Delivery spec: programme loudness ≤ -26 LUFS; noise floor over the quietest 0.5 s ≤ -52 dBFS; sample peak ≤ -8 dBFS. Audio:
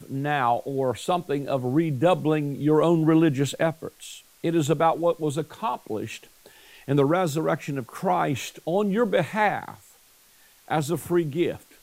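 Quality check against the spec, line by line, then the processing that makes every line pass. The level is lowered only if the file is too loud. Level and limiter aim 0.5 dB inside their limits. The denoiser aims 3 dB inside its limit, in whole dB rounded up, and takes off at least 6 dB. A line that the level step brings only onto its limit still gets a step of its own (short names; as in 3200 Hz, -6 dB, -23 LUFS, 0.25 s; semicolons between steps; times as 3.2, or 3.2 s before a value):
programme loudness -24.5 LUFS: fail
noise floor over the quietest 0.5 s -56 dBFS: OK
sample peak -8.5 dBFS: OK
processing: gain -2 dB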